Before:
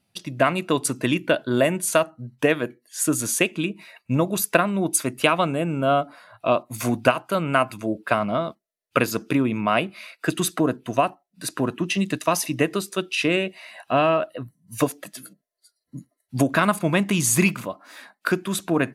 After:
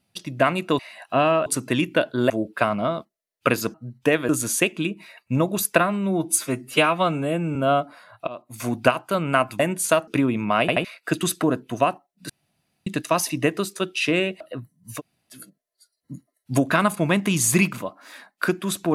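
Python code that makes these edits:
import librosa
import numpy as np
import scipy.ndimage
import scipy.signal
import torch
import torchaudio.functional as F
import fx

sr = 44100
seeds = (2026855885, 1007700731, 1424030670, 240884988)

y = fx.edit(x, sr, fx.swap(start_s=1.63, length_s=0.48, other_s=7.8, other_length_s=1.44),
    fx.cut(start_s=2.66, length_s=0.42),
    fx.stretch_span(start_s=4.59, length_s=1.17, factor=1.5),
    fx.fade_in_from(start_s=6.48, length_s=0.59, floor_db=-23.0),
    fx.stutter_over(start_s=9.77, slice_s=0.08, count=3),
    fx.room_tone_fill(start_s=11.46, length_s=0.57),
    fx.move(start_s=13.57, length_s=0.67, to_s=0.79),
    fx.room_tone_fill(start_s=14.8, length_s=0.37, crossfade_s=0.1), tone=tone)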